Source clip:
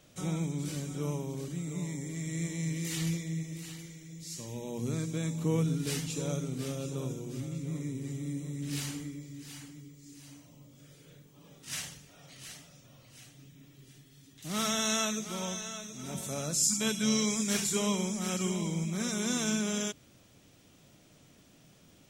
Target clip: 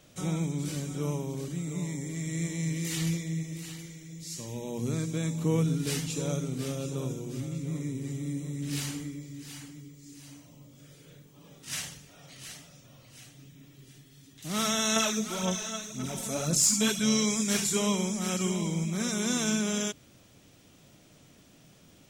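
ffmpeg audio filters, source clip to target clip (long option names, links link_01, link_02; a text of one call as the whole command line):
ffmpeg -i in.wav -filter_complex "[0:a]asettb=1/sr,asplit=3[link_01][link_02][link_03];[link_01]atrim=end=14.964[link_04];[link_02]atrim=start=14.96:end=17,asetpts=PTS-STARTPTS,afade=type=in:duration=0.004:curve=qsin,afade=type=out:start_time=2.036:duration=0.004:curve=qsin,aphaser=in_gain=1:out_gain=1:delay=4.5:decay=0.55:speed=1.9:type=sinusoidal[link_05];[link_03]atrim=start=16.996[link_06];[link_04][link_05]acrossfade=duration=0.004:curve1=hsin:curve2=qsin[link_07];[link_07][link_06]acrossfade=duration=0.004:curve1=qsin:curve2=hsin,volume=2.5dB" out.wav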